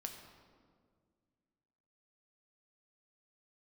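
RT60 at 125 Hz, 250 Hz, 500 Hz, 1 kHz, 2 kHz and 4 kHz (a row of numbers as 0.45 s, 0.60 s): 2.5 s, 2.6 s, 2.1 s, 1.7 s, 1.3 s, 1.1 s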